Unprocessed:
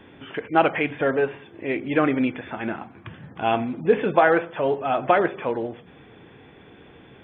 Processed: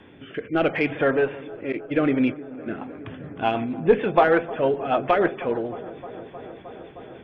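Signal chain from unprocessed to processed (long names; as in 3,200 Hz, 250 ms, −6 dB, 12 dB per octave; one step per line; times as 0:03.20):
one-sided soft clipper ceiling −4.5 dBFS
0:01.72–0:02.71: noise gate −26 dBFS, range −24 dB
rotating-speaker cabinet horn 0.7 Hz, later 6.7 Hz, at 0:02.40
delay with a low-pass on its return 310 ms, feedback 83%, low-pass 1,200 Hz, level −18.5 dB
level +2.5 dB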